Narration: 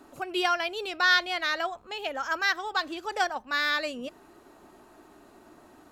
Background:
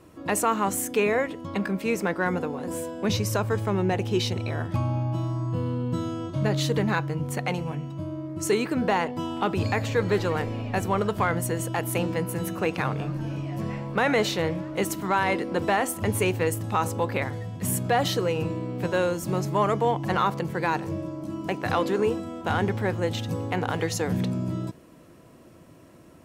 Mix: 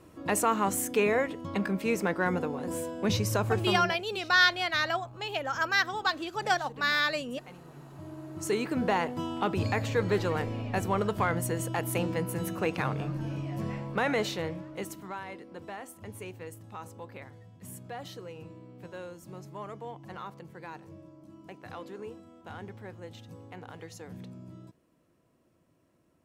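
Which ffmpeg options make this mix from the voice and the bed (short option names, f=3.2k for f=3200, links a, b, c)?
-filter_complex "[0:a]adelay=3300,volume=0dB[a];[1:a]volume=15.5dB,afade=t=out:st=3.58:d=0.41:silence=0.112202,afade=t=in:st=7.69:d=1.14:silence=0.125893,afade=t=out:st=13.7:d=1.57:silence=0.188365[b];[a][b]amix=inputs=2:normalize=0"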